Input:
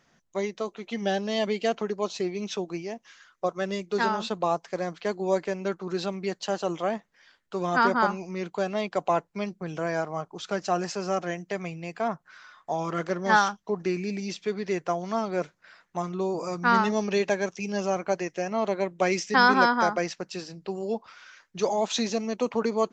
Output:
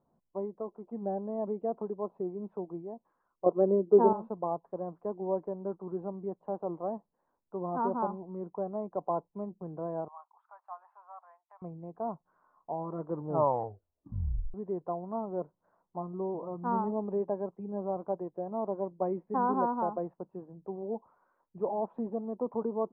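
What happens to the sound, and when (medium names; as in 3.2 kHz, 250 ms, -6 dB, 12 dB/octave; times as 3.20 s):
3.46–4.13 s: peaking EQ 390 Hz +14 dB 2.1 oct
10.08–11.62 s: steep high-pass 920 Hz
12.95 s: tape stop 1.59 s
whole clip: Chebyshev low-pass 1 kHz, order 4; trim -6 dB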